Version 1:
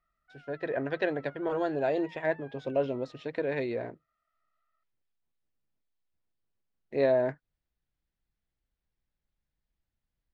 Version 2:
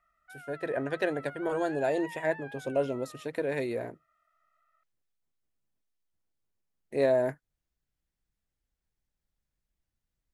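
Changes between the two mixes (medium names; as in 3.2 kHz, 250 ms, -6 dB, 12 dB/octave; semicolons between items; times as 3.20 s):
background +8.5 dB; master: remove low-pass 4.7 kHz 24 dB/octave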